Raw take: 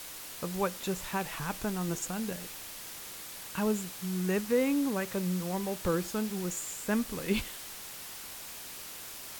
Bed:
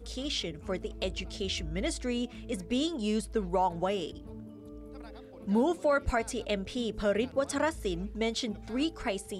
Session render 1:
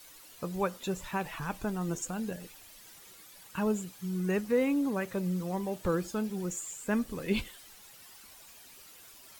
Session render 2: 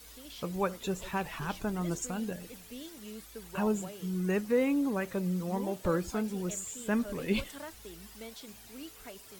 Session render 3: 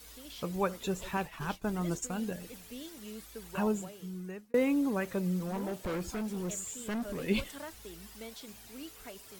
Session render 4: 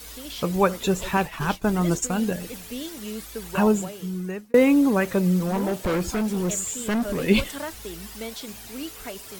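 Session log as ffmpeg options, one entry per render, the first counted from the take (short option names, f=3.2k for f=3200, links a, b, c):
-af "afftdn=nr=12:nf=-44"
-filter_complex "[1:a]volume=-15.5dB[a];[0:a][a]amix=inputs=2:normalize=0"
-filter_complex "[0:a]asettb=1/sr,asplit=3[a][b][c];[a]atrim=end=1.174[d];[b]atrim=start=1.17:end=2.19,asetpts=PTS-STARTPTS,afade=t=in:d=0.004:c=qsin,afade=t=out:st=1.016:d=0.004:c=qsin,agate=range=-33dB:threshold=-37dB:ratio=3:release=100:detection=peak[e];[c]atrim=start=2.186[f];[d][e]acrossfade=d=0.004:c1=hsin:c2=qsin[g];[g][f]acrossfade=d=0.004:c1=qsin:c2=hsin,asettb=1/sr,asplit=3[h][i][j];[h]atrim=end=5.394[k];[i]atrim=start=5.39:end=7.2,asetpts=PTS-STARTPTS,afade=t=in:d=0.004:c=qsin,afade=t=out:st=1.806:d=0.004:c=qsin,asoftclip=type=hard:threshold=-32dB[l];[j]atrim=start=7.196[m];[k][l]acrossfade=d=0.004:c1=hsin:c2=qsin[n];[n][m]acrossfade=d=0.004:c1=qsin:c2=hsin,asplit=2[o][p];[o]atrim=end=4.54,asetpts=PTS-STARTPTS,afade=t=out:st=3.59:d=0.95[q];[p]atrim=start=4.54,asetpts=PTS-STARTPTS,afade=t=in:d=0.004:c=hsin[r];[q][r]concat=n=2:v=0:a=1"
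-af "volume=11dB"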